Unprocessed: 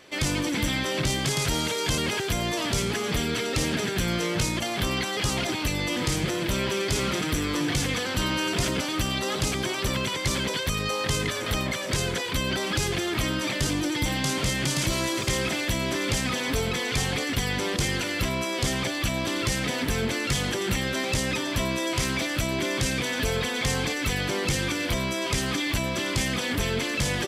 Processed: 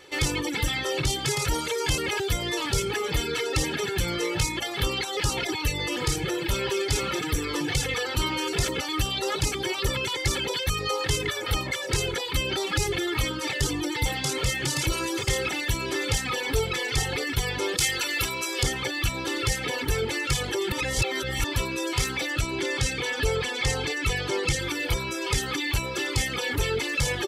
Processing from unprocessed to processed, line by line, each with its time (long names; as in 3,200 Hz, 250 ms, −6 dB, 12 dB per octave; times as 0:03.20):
0:17.77–0:18.63: spectral tilt +2 dB per octave
0:20.72–0:21.44: reverse
0:22.32–0:24.61: low-pass filter 10,000 Hz
whole clip: reverb reduction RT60 1.1 s; comb filter 2.3 ms, depth 68%